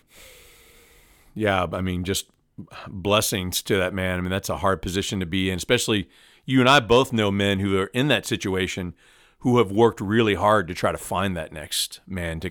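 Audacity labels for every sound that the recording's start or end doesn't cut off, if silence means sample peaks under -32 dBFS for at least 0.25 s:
1.370000	2.210000	sound
2.590000	6.020000	sound
6.480000	8.910000	sound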